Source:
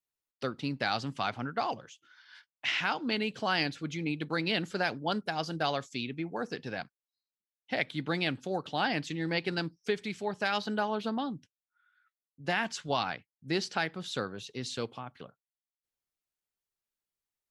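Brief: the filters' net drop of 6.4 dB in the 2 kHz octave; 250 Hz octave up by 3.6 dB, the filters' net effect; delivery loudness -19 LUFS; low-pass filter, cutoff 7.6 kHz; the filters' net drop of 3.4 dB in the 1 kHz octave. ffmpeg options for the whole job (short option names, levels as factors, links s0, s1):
-af "lowpass=7600,equalizer=f=250:t=o:g=5,equalizer=f=1000:t=o:g=-3.5,equalizer=f=2000:t=o:g=-7.5,volume=5.31"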